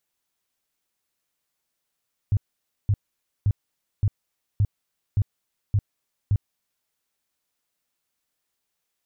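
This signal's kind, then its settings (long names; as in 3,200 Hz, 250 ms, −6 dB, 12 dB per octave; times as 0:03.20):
tone bursts 102 Hz, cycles 5, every 0.57 s, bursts 8, −16 dBFS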